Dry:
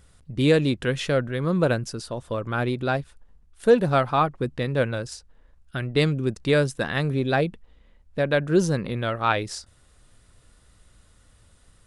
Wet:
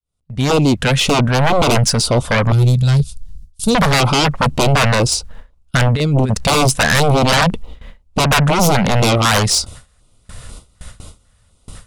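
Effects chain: opening faded in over 1.71 s; gate with hold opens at -44 dBFS; 2.52–3.75 EQ curve 160 Hz 0 dB, 380 Hz -25 dB, 2000 Hz -19 dB, 4500 Hz 0 dB; limiter -15 dBFS, peak gain reduction 7.5 dB; 5.76–6.34 negative-ratio compressor -29 dBFS, ratio -0.5; sine folder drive 12 dB, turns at -15 dBFS; LFO notch square 2 Hz 340–1700 Hz; gain +6.5 dB

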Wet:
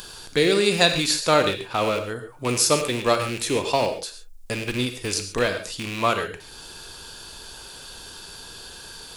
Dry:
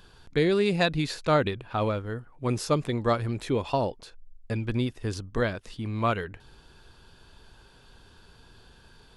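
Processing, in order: rattling part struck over -33 dBFS, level -28 dBFS; tone controls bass -8 dB, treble +14 dB; in parallel at -1 dB: upward compressor, threshold -30 dBFS; on the sum: non-linear reverb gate 0.16 s flat, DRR 7 dB; gain -1 dB

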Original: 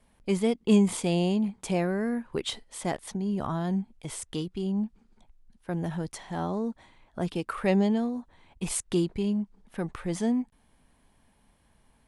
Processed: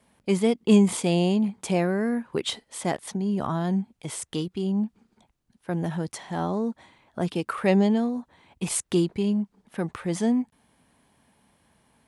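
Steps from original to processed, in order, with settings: HPF 100 Hz 12 dB/oct; gain +3.5 dB

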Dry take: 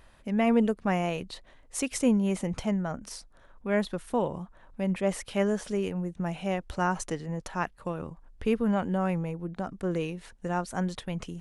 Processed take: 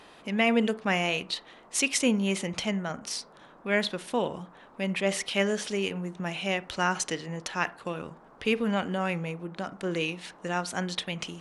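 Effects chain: weighting filter D; band noise 150–1200 Hz -55 dBFS; on a send: reverb RT60 0.40 s, pre-delay 23 ms, DRR 16 dB

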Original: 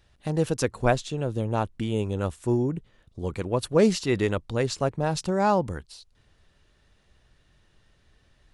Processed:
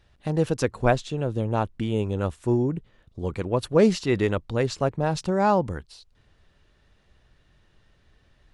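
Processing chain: high shelf 6300 Hz -9 dB; gain +1.5 dB

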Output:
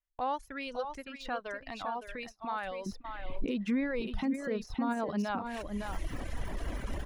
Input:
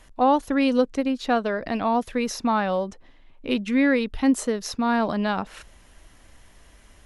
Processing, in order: recorder AGC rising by 42 dB/s; bell 250 Hz -14.5 dB 2.7 oct, from 2.86 s +2 dB; echo 0.561 s -7 dB; limiter -15.5 dBFS, peak gain reduction 8.5 dB; de-esser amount 80%; reverb removal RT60 1.2 s; gate -36 dBFS, range -33 dB; high shelf 3800 Hz -7 dB; gain -7 dB

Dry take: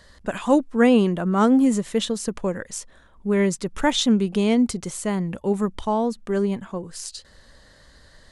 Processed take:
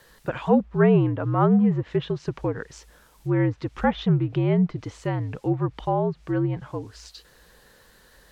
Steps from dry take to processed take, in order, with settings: air absorption 170 m; requantised 10-bit, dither triangular; frequency shift -63 Hz; low shelf 70 Hz -11 dB; treble ducked by the level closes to 1900 Hz, closed at -19 dBFS

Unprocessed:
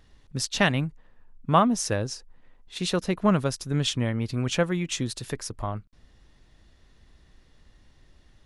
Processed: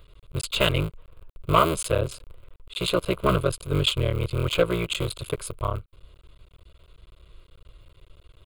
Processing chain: cycle switcher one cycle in 3, muted; hard clip -16 dBFS, distortion -13 dB; fixed phaser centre 1200 Hz, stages 8; gain +8 dB

